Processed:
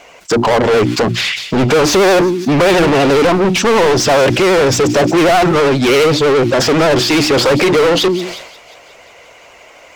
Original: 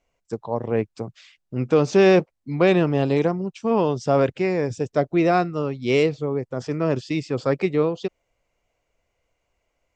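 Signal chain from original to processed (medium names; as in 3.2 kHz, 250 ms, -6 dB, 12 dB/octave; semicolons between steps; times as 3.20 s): hum notches 60/120/180/240/300/360 Hz; in parallel at +1 dB: compression, threshold -27 dBFS, peak gain reduction 14.5 dB; on the sum: overdrive pedal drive 38 dB, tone 4.3 kHz, clips at -4 dBFS; vibrato 12 Hz 72 cents; on a send: feedback echo behind a high-pass 178 ms, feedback 66%, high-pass 2.8 kHz, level -17 dB; on the sum: decay stretcher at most 62 dB/s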